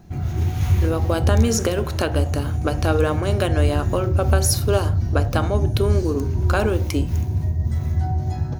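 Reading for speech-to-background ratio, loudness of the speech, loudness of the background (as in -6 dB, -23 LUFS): -1.5 dB, -24.0 LUFS, -22.5 LUFS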